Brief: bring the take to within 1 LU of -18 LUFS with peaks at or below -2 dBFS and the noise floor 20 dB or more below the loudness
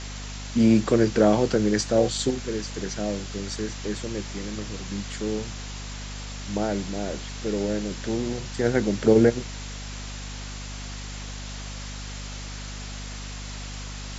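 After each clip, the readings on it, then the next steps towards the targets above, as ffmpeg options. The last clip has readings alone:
hum 50 Hz; harmonics up to 250 Hz; hum level -34 dBFS; noise floor -36 dBFS; noise floor target -47 dBFS; loudness -27.0 LUFS; peak -5.5 dBFS; loudness target -18.0 LUFS
-> -af "bandreject=f=50:t=h:w=6,bandreject=f=100:t=h:w=6,bandreject=f=150:t=h:w=6,bandreject=f=200:t=h:w=6,bandreject=f=250:t=h:w=6"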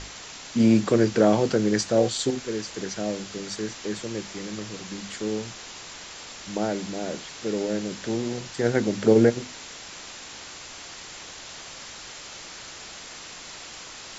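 hum none; noise floor -42 dBFS; noise floor target -46 dBFS
-> -af "afftdn=nr=6:nf=-42"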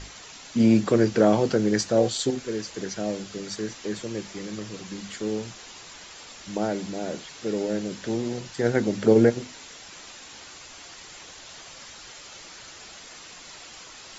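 noise floor -45 dBFS; noise floor target -46 dBFS
-> -af "afftdn=nr=6:nf=-45"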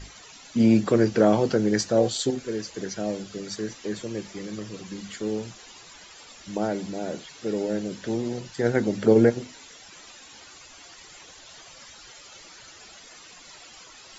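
noise floor -48 dBFS; loudness -25.5 LUFS; peak -5.5 dBFS; loudness target -18.0 LUFS
-> -af "volume=7.5dB,alimiter=limit=-2dB:level=0:latency=1"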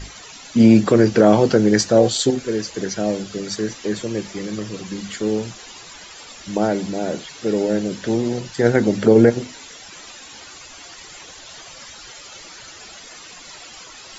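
loudness -18.5 LUFS; peak -2.0 dBFS; noise floor -41 dBFS

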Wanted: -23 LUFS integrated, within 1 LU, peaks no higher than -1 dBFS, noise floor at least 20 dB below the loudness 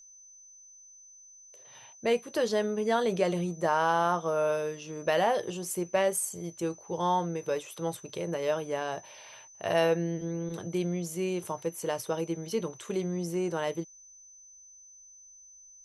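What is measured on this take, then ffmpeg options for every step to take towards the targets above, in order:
steady tone 6100 Hz; tone level -51 dBFS; loudness -30.5 LUFS; peak -13.5 dBFS; loudness target -23.0 LUFS
-> -af "bandreject=f=6.1k:w=30"
-af "volume=7.5dB"

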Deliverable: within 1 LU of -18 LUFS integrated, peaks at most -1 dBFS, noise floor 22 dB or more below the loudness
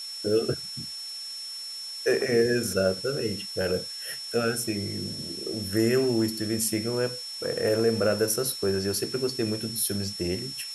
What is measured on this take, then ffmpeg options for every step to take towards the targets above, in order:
steady tone 5400 Hz; tone level -35 dBFS; noise floor -38 dBFS; noise floor target -50 dBFS; loudness -27.5 LUFS; peak -11.0 dBFS; loudness target -18.0 LUFS
-> -af "bandreject=f=5.4k:w=30"
-af "afftdn=nr=12:nf=-38"
-af "volume=9.5dB"

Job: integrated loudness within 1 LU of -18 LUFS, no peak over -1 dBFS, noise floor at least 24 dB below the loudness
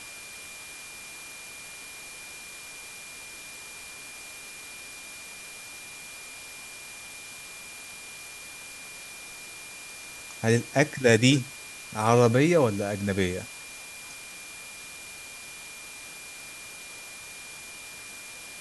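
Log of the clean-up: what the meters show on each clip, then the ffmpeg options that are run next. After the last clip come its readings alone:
steady tone 2400 Hz; tone level -44 dBFS; noise floor -43 dBFS; noise floor target -55 dBFS; loudness -31.0 LUFS; peak -4.5 dBFS; loudness target -18.0 LUFS
-> -af "bandreject=f=2.4k:w=30"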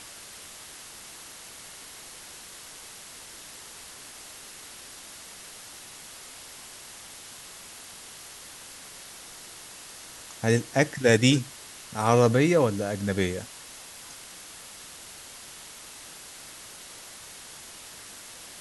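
steady tone none; noise floor -45 dBFS; noise floor target -48 dBFS
-> -af "afftdn=nr=6:nf=-45"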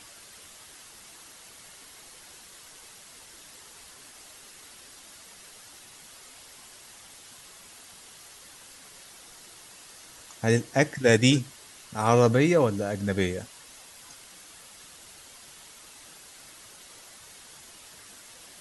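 noise floor -50 dBFS; loudness -24.0 LUFS; peak -5.0 dBFS; loudness target -18.0 LUFS
-> -af "volume=6dB,alimiter=limit=-1dB:level=0:latency=1"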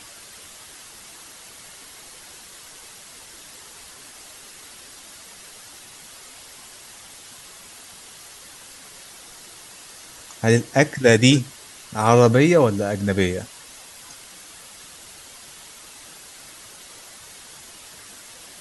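loudness -18.0 LUFS; peak -1.0 dBFS; noise floor -44 dBFS

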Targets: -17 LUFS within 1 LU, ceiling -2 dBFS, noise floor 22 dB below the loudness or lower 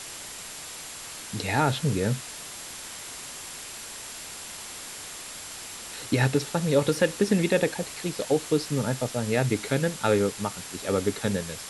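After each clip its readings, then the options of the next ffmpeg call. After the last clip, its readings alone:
steady tone 7400 Hz; tone level -48 dBFS; noise floor -40 dBFS; noise floor target -50 dBFS; loudness -28.0 LUFS; peak -8.5 dBFS; loudness target -17.0 LUFS
-> -af "bandreject=f=7.4k:w=30"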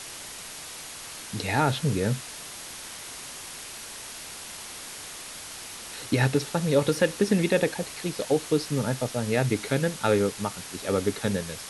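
steady tone none; noise floor -41 dBFS; noise floor target -50 dBFS
-> -af "afftdn=nr=9:nf=-41"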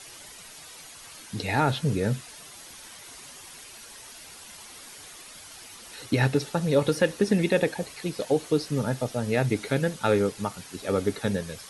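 noise floor -46 dBFS; noise floor target -49 dBFS
-> -af "afftdn=nr=6:nf=-46"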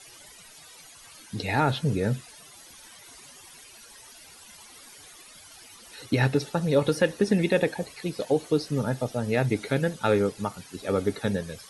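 noise floor -50 dBFS; loudness -26.5 LUFS; peak -9.0 dBFS; loudness target -17.0 LUFS
-> -af "volume=9.5dB,alimiter=limit=-2dB:level=0:latency=1"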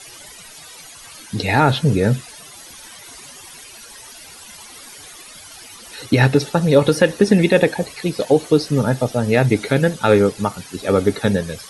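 loudness -17.0 LUFS; peak -2.0 dBFS; noise floor -40 dBFS

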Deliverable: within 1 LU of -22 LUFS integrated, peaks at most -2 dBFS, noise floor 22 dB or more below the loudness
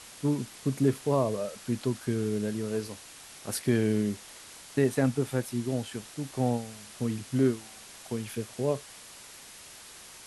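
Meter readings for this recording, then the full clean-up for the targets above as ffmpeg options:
noise floor -49 dBFS; noise floor target -53 dBFS; loudness -30.5 LUFS; peak -12.5 dBFS; loudness target -22.0 LUFS
-> -af "afftdn=nr=6:nf=-49"
-af "volume=8.5dB"

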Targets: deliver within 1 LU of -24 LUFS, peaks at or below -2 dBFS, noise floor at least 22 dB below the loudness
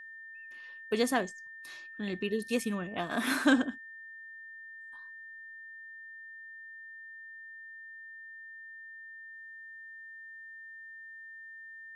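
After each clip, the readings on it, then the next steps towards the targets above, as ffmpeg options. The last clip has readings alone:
steady tone 1800 Hz; tone level -45 dBFS; loudness -37.0 LUFS; peak -13.0 dBFS; loudness target -24.0 LUFS
-> -af "bandreject=f=1.8k:w=30"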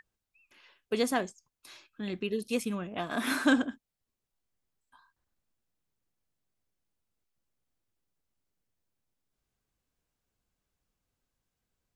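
steady tone none; loudness -31.5 LUFS; peak -13.5 dBFS; loudness target -24.0 LUFS
-> -af "volume=7.5dB"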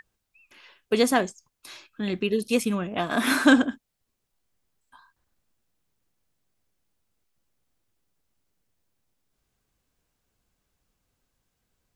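loudness -24.0 LUFS; peak -6.0 dBFS; noise floor -80 dBFS

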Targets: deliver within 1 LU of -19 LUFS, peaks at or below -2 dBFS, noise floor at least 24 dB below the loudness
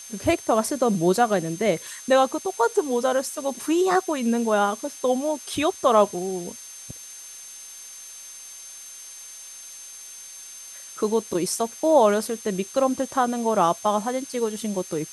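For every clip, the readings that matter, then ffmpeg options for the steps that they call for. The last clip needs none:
steady tone 6300 Hz; tone level -41 dBFS; noise floor -42 dBFS; noise floor target -47 dBFS; loudness -23.0 LUFS; peak -5.5 dBFS; loudness target -19.0 LUFS
-> -af "bandreject=f=6.3k:w=30"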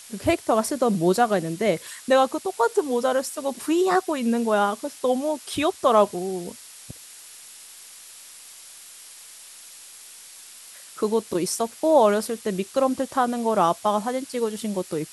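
steady tone none; noise floor -45 dBFS; noise floor target -47 dBFS
-> -af "afftdn=nr=6:nf=-45"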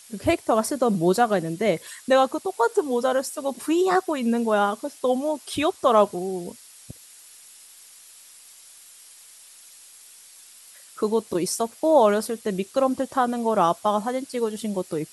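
noise floor -49 dBFS; loudness -23.5 LUFS; peak -5.5 dBFS; loudness target -19.0 LUFS
-> -af "volume=4.5dB,alimiter=limit=-2dB:level=0:latency=1"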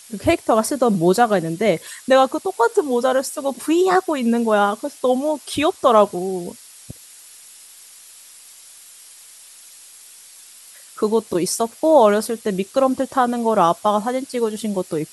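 loudness -19.0 LUFS; peak -2.0 dBFS; noise floor -44 dBFS

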